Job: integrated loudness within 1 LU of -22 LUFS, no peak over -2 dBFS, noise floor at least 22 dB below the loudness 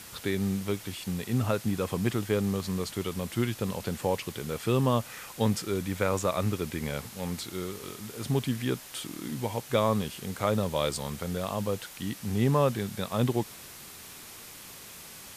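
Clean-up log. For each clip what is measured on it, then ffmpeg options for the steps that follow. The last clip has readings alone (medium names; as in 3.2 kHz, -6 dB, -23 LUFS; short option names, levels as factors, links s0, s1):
noise floor -46 dBFS; noise floor target -53 dBFS; loudness -30.5 LUFS; peak level -11.0 dBFS; loudness target -22.0 LUFS
-> -af "afftdn=nr=7:nf=-46"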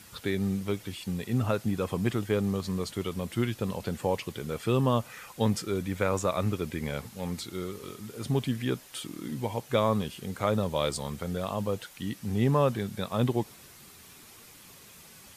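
noise floor -52 dBFS; noise floor target -53 dBFS
-> -af "afftdn=nr=6:nf=-52"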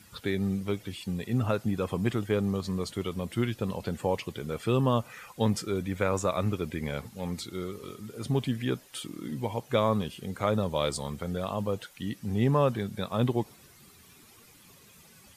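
noise floor -56 dBFS; loudness -30.5 LUFS; peak level -11.5 dBFS; loudness target -22.0 LUFS
-> -af "volume=2.66"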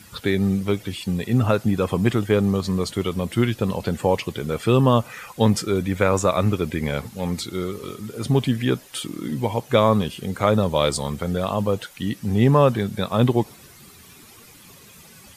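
loudness -22.0 LUFS; peak level -3.0 dBFS; noise floor -47 dBFS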